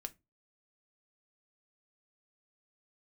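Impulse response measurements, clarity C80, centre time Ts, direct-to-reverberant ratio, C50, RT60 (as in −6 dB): 32.5 dB, 2 ms, 9.0 dB, 23.5 dB, 0.25 s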